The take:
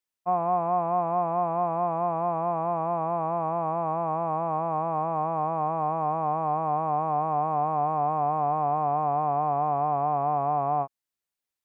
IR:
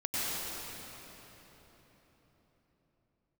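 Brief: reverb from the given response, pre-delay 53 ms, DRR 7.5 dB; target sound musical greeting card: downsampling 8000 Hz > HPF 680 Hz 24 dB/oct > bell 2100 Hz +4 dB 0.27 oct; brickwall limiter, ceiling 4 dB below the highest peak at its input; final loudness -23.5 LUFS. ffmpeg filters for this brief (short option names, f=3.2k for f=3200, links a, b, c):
-filter_complex "[0:a]alimiter=limit=-19.5dB:level=0:latency=1,asplit=2[a][b];[1:a]atrim=start_sample=2205,adelay=53[c];[b][c]afir=irnorm=-1:irlink=0,volume=-15.5dB[d];[a][d]amix=inputs=2:normalize=0,aresample=8000,aresample=44100,highpass=f=680:w=0.5412,highpass=f=680:w=1.3066,equalizer=f=2.1k:t=o:w=0.27:g=4,volume=6dB"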